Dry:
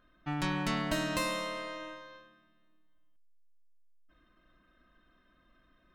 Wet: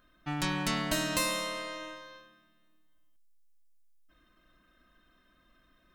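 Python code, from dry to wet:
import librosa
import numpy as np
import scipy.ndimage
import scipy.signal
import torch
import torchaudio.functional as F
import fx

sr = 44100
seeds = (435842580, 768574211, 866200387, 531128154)

y = fx.high_shelf(x, sr, hz=4200.0, db=10.5)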